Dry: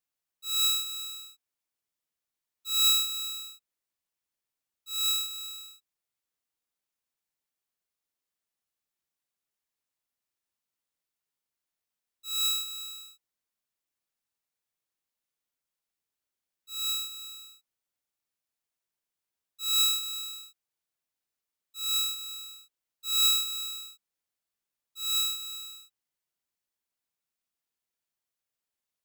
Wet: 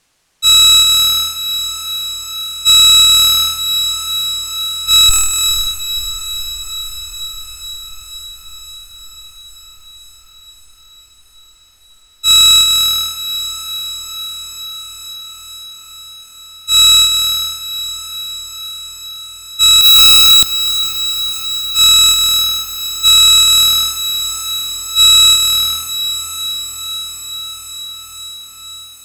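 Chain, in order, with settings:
0:05.09–0:05.67: lower of the sound and its delayed copy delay 3.2 ms
low-pass filter 8,700 Hz 12 dB per octave
low-shelf EQ 100 Hz +6.5 dB
in parallel at +2.5 dB: downward compressor 12 to 1, threshold −39 dBFS, peak gain reduction 18.5 dB
0:19.81–0:20.43: on the sum: comparator with hysteresis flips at −38 dBFS
on a send: feedback delay with all-pass diffusion 516 ms, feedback 77%, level −13 dB
on the sum: boost into a limiter +24.5 dB
level −1 dB

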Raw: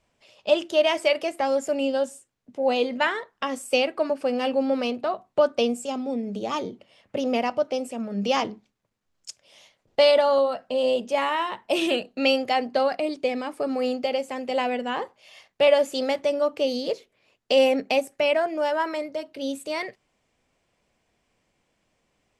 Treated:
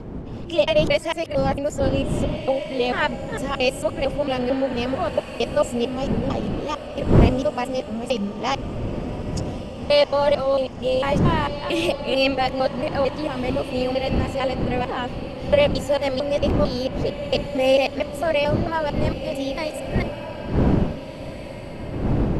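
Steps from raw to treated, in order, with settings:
reversed piece by piece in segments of 225 ms
wind on the microphone 260 Hz −28 dBFS
feedback delay with all-pass diffusion 1,756 ms, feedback 44%, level −11 dB
level +1 dB

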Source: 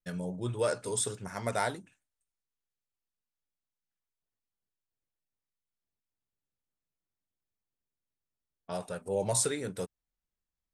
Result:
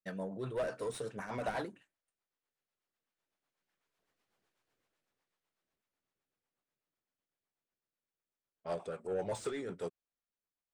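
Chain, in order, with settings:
source passing by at 0:04.42, 20 m/s, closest 11 metres
mid-hump overdrive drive 24 dB, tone 1,100 Hz, clips at −30 dBFS
rotating-speaker cabinet horn 8 Hz
level +7.5 dB

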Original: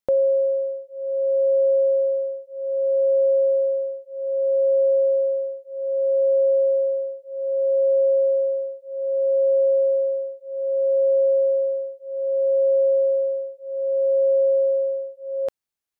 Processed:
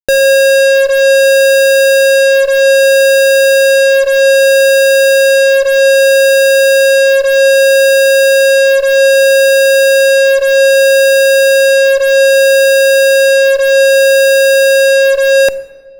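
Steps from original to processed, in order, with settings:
fuzz pedal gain 48 dB, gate −54 dBFS
rectangular room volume 1,200 cubic metres, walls mixed, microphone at 0.38 metres
level +6 dB

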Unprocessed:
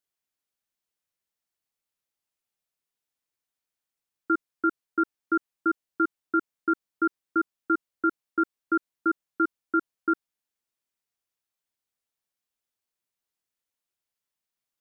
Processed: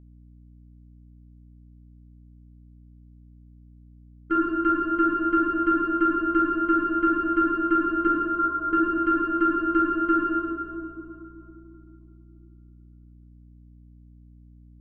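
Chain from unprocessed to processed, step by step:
noise gate −24 dBFS, range −21 dB
in parallel at +2 dB: downward compressor, threshold −33 dBFS, peak gain reduction 12.5 dB
on the sum: harmonic generator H 2 −19 dB, 4 −44 dB, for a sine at −11.5 dBFS
0:08.07–0:08.73: linear-phase brick-wall band-pass 470–1,500 Hz
convolution reverb RT60 2.9 s, pre-delay 12 ms, DRR −4.5 dB
mains hum 60 Hz, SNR 23 dB
level −7.5 dB

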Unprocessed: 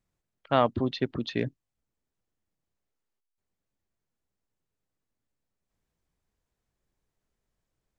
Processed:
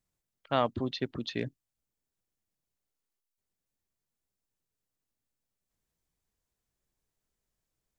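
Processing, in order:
high-shelf EQ 4,300 Hz +9 dB
level −5 dB

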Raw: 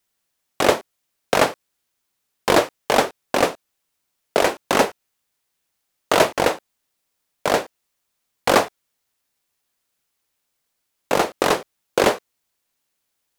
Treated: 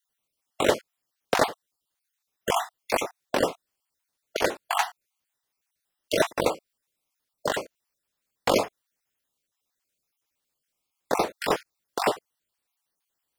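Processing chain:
time-frequency cells dropped at random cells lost 37%
level −4.5 dB

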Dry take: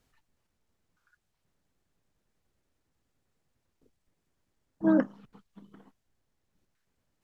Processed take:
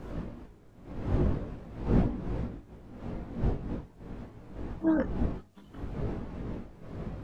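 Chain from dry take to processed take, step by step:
wind on the microphone 230 Hz −33 dBFS
multi-voice chorus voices 4, 0.41 Hz, delay 19 ms, depth 2.5 ms
one half of a high-frequency compander encoder only
level +1.5 dB

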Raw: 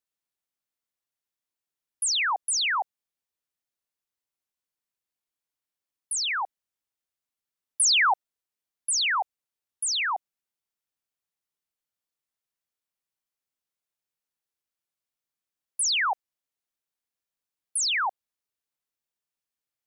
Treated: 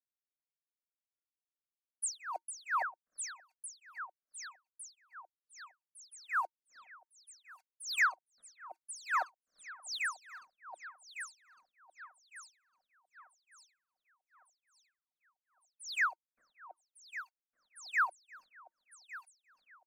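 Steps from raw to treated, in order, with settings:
hollow resonant body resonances 340/920/2,500 Hz, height 13 dB, ringing for 100 ms
leveller curve on the samples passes 2
low-pass that shuts in the quiet parts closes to 2,300 Hz, open at −17.5 dBFS
high-shelf EQ 9,600 Hz −5.5 dB
phaser with its sweep stopped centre 580 Hz, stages 8
delay that swaps between a low-pass and a high-pass 578 ms, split 1,700 Hz, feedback 64%, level −5 dB
tremolo with a sine in dB 2.5 Hz, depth 23 dB
level −7.5 dB

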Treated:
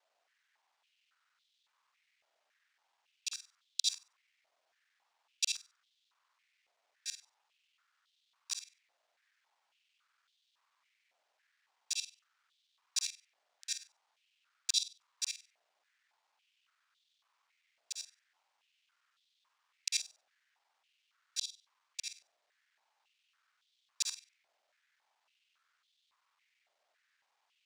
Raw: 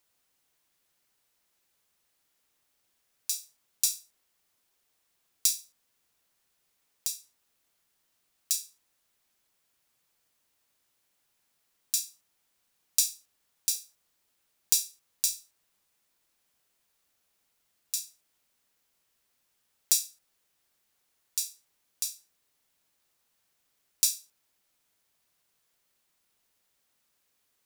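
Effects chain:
reversed piece by piece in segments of 48 ms
high-frequency loss of the air 120 metres
regular buffer underruns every 0.38 s, samples 512, repeat, from 0:00.89
high-pass on a step sequencer 3.6 Hz 650–3,500 Hz

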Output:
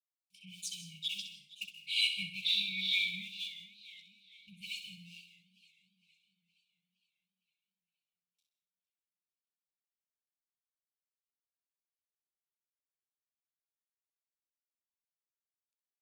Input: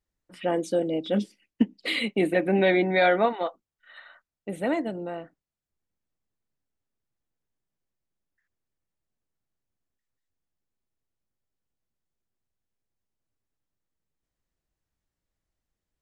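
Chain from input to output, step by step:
mu-law and A-law mismatch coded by A
meter weighting curve D
healed spectral selection 0:02.48–0:03.02, 2,700–5,600 Hz after
high-shelf EQ 5,000 Hz +6.5 dB
brickwall limiter −10 dBFS, peak gain reduction 5.5 dB
two-band tremolo in antiphase 2.2 Hz, depth 100%, crossover 1,600 Hz
pitch vibrato 0.5 Hz 85 cents
linear-phase brick-wall band-stop 190–2,200 Hz
flutter between parallel walls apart 10.9 metres, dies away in 0.43 s
convolution reverb RT60 0.35 s, pre-delay 115 ms, DRR 11.5 dB
feedback echo with a swinging delay time 463 ms, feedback 52%, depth 132 cents, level −19 dB
level −5.5 dB

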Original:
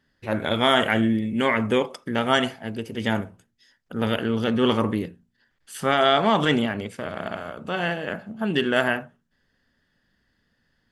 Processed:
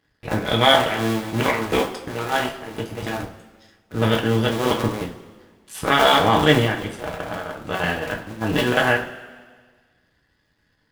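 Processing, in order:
sub-harmonics by changed cycles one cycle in 2, muted
coupled-rooms reverb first 0.27 s, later 1.6 s, from −17 dB, DRR −0.5 dB
level +2.5 dB

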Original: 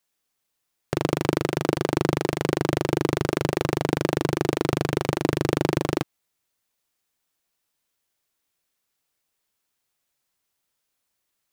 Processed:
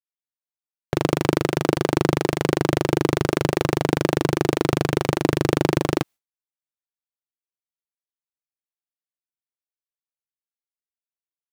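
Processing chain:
downward expander −36 dBFS
level +3 dB

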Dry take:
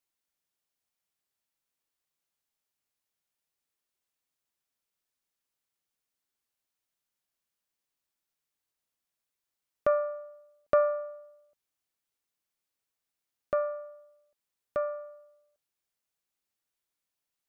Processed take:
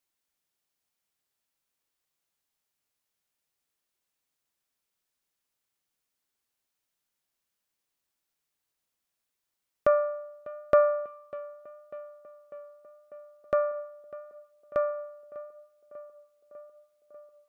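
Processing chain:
tape delay 596 ms, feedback 80%, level −17 dB, low-pass 1,900 Hz
level +3 dB

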